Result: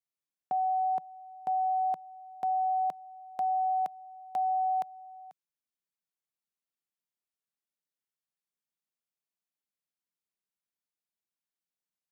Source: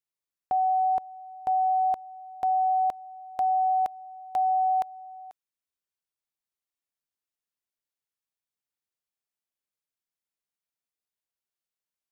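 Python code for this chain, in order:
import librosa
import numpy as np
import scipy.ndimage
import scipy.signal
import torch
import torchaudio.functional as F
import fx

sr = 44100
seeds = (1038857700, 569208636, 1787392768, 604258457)

y = fx.low_shelf_res(x, sr, hz=120.0, db=-11.0, q=3.0)
y = y * 10.0 ** (-5.0 / 20.0)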